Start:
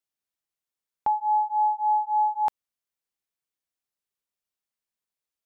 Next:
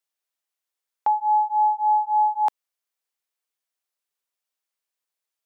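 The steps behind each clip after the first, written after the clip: HPF 440 Hz; gain +3.5 dB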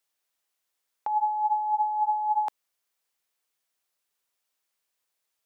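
negative-ratio compressor -26 dBFS, ratio -1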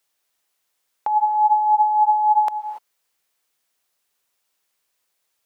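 non-linear reverb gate 0.31 s rising, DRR 10 dB; gain +7 dB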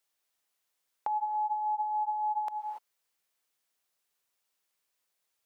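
compressor 10:1, threshold -21 dBFS, peak gain reduction 9 dB; gain -7.5 dB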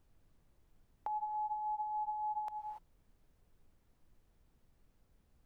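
added noise brown -60 dBFS; gain -7 dB

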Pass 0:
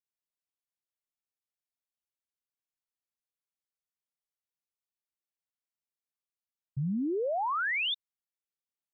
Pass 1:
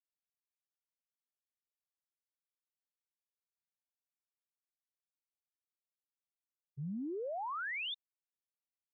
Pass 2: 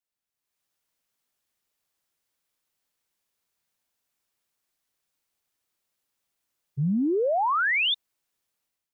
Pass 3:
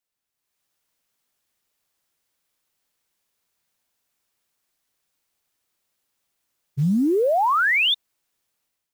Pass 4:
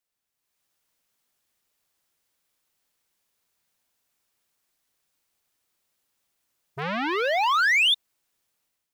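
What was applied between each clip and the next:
expander -23 dBFS; gain +1.5 dB
AGC gain up to 11.5 dB; gain +4 dB
short-mantissa float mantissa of 4-bit; gain +4.5 dB
core saturation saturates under 1400 Hz

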